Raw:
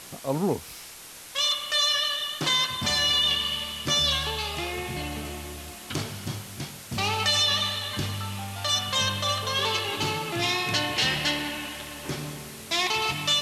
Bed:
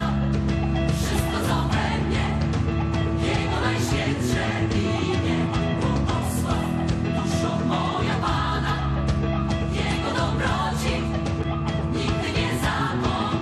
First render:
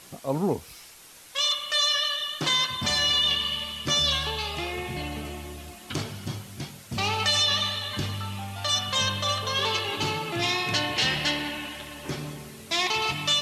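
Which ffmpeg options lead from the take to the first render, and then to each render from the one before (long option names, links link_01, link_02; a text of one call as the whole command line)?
ffmpeg -i in.wav -af "afftdn=noise_reduction=6:noise_floor=-43" out.wav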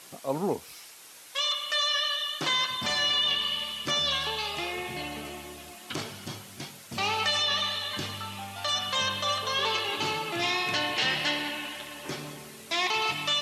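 ffmpeg -i in.wav -filter_complex "[0:a]acrossover=split=3200[link_01][link_02];[link_02]acompressor=threshold=-32dB:ratio=4:attack=1:release=60[link_03];[link_01][link_03]amix=inputs=2:normalize=0,highpass=frequency=330:poles=1" out.wav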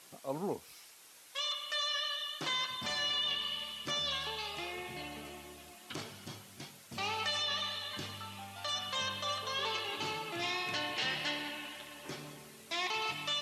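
ffmpeg -i in.wav -af "volume=-8dB" out.wav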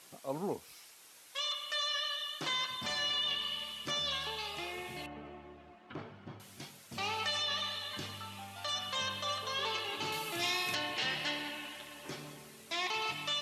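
ffmpeg -i in.wav -filter_complex "[0:a]asettb=1/sr,asplit=3[link_01][link_02][link_03];[link_01]atrim=end=5.064[link_04];[link_02]atrim=start=5.06:end=6.4,asetpts=PTS-STARTPTS,afade=type=in:duration=0.004:curve=qsin,afade=type=out:start_time=1.336:duration=0.004:curve=qsin,lowpass=1600[link_05];[link_03]atrim=start=6.396[link_06];[link_04][link_05]acrossfade=duration=0.004:curve1=hsin:curve2=qsin[link_07];[link_07][link_06]acrossfade=duration=0.004:curve1=qsin:curve2=hsin,asettb=1/sr,asplit=3[link_08][link_09][link_10];[link_08]atrim=end=10.124[link_11];[link_09]atrim=start=10.12:end=10.75,asetpts=PTS-STARTPTS,afade=type=in:duration=0.004:curve=qsin,afade=type=out:start_time=0.626:duration=0.004:curve=qsin,aemphasis=mode=production:type=50kf[link_12];[link_10]atrim=start=10.746[link_13];[link_11][link_12]acrossfade=duration=0.004:curve1=hsin:curve2=qsin[link_14];[link_14][link_13]acrossfade=duration=0.004:curve1=qsin:curve2=hsin" out.wav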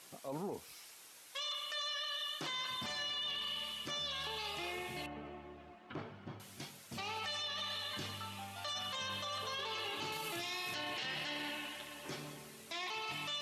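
ffmpeg -i in.wav -af "areverse,acompressor=mode=upward:threshold=-52dB:ratio=2.5,areverse,alimiter=level_in=8.5dB:limit=-24dB:level=0:latency=1:release=14,volume=-8.5dB" out.wav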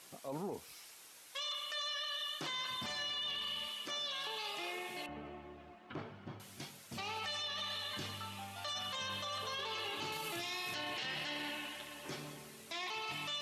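ffmpeg -i in.wav -filter_complex "[0:a]asettb=1/sr,asplit=3[link_01][link_02][link_03];[link_01]atrim=end=3.684[link_04];[link_02]atrim=start=3.68:end=5.09,asetpts=PTS-STARTPTS,afade=type=in:duration=0.004:curve=qsin,afade=type=out:start_time=1.406:duration=0.004:curve=qsin,highpass=280[link_05];[link_03]atrim=start=5.086[link_06];[link_04][link_05]acrossfade=duration=0.004:curve1=hsin:curve2=qsin[link_07];[link_07][link_06]acrossfade=duration=0.004:curve1=qsin:curve2=hsin" out.wav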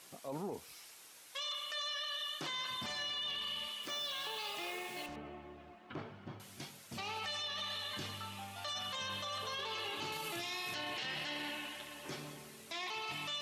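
ffmpeg -i in.wav -filter_complex "[0:a]asettb=1/sr,asplit=3[link_01][link_02][link_03];[link_01]atrim=end=3.834[link_04];[link_02]atrim=start=3.83:end=5.16,asetpts=PTS-STARTPTS,afade=type=in:duration=0.004:curve=qsin,afade=type=out:start_time=1.326:duration=0.004:curve=qsin,acrusher=bits=7:mix=0:aa=0.5[link_05];[link_03]atrim=start=5.156[link_06];[link_04][link_05]acrossfade=duration=0.004:curve1=hsin:curve2=qsin[link_07];[link_07][link_06]acrossfade=duration=0.004:curve1=qsin:curve2=hsin" out.wav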